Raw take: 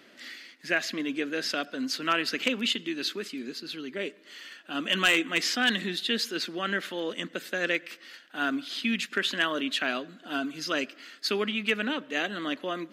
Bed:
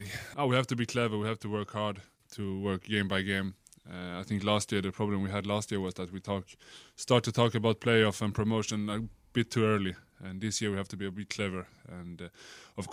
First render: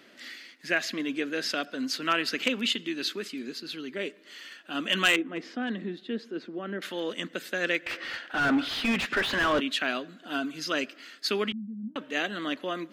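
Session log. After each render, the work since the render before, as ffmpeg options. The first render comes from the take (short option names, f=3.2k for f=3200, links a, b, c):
-filter_complex "[0:a]asettb=1/sr,asplit=3[a][b][c];[a]atrim=end=5.164[d];[b]atrim=start=5.16:end=6.82,asetpts=PTS-STARTPTS,afade=t=in:d=0.004:c=qsin,afade=t=out:st=1.656:d=0.004:c=qsin,bandpass=f=300:t=q:w=0.69[e];[c]atrim=start=6.816[f];[d][e]acrossfade=d=0.004:c1=hsin:c2=qsin[g];[g][f]acrossfade=d=0.004:c1=qsin:c2=hsin,asettb=1/sr,asplit=3[h][i][j];[h]atrim=end=7.864[k];[i]atrim=start=7.86:end=9.6,asetpts=PTS-STARTPTS,afade=t=in:d=0.004:c=qsin,afade=t=out:st=1.736:d=0.004:c=qsin,asplit=2[l][m];[m]highpass=f=720:p=1,volume=26dB,asoftclip=type=tanh:threshold=-14.5dB[n];[l][n]amix=inputs=2:normalize=0,lowpass=f=1.1k:p=1,volume=-6dB[o];[j]atrim=start=9.596[p];[k][o]acrossfade=d=0.004:c1=hsin:c2=qsin[q];[q][p]acrossfade=d=0.004:c1=qsin:c2=hsin,asettb=1/sr,asplit=3[r][s][t];[r]atrim=end=11.524[u];[s]atrim=start=11.52:end=11.96,asetpts=PTS-STARTPTS,afade=t=in:d=0.004:c=qsin,afade=t=out:st=0.436:d=0.004:c=qsin,asuperpass=centerf=200:order=4:qfactor=4.1[v];[t]atrim=start=11.956[w];[u][v]acrossfade=d=0.004:c1=hsin:c2=qsin[x];[x][w]acrossfade=d=0.004:c1=qsin:c2=hsin"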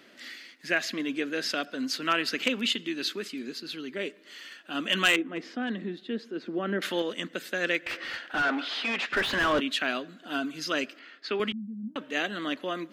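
-filter_complex "[0:a]asettb=1/sr,asplit=3[a][b][c];[a]atrim=end=6.464[d];[b]atrim=start=6.46:end=7.02,asetpts=PTS-STARTPTS,afade=t=in:d=0.004:c=qsin,afade=t=out:st=0.556:d=0.004:c=qsin,acontrast=30[e];[c]atrim=start=7.016[f];[d][e]acrossfade=d=0.004:c1=hsin:c2=qsin[g];[g][f]acrossfade=d=0.004:c1=qsin:c2=hsin,asplit=3[h][i][j];[h]afade=t=out:st=8.41:d=0.02[k];[i]highpass=400,lowpass=5.6k,afade=t=in:st=8.41:d=0.02,afade=t=out:st=9.12:d=0.02[l];[j]afade=t=in:st=9.12:d=0.02[m];[k][l][m]amix=inputs=3:normalize=0,asettb=1/sr,asplit=3[n][o][p];[n]atrim=end=10.994[q];[o]atrim=start=10.99:end=11.4,asetpts=PTS-STARTPTS,afade=t=in:d=0.004:c=qsin,afade=t=out:st=0.406:d=0.004:c=qsin,highpass=250,lowpass=2.7k[r];[p]atrim=start=11.396[s];[q][r]acrossfade=d=0.004:c1=hsin:c2=qsin[t];[t][s]acrossfade=d=0.004:c1=qsin:c2=hsin"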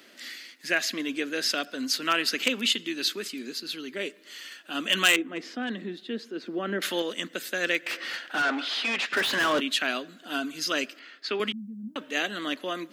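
-af "highpass=170,highshelf=f=4.8k:g=10"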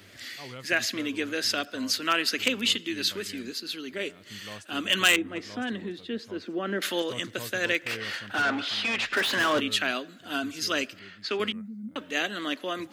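-filter_complex "[1:a]volume=-15.5dB[a];[0:a][a]amix=inputs=2:normalize=0"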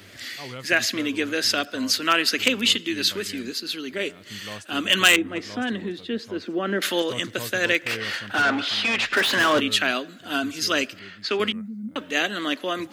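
-af "volume=5dB,alimiter=limit=-2dB:level=0:latency=1"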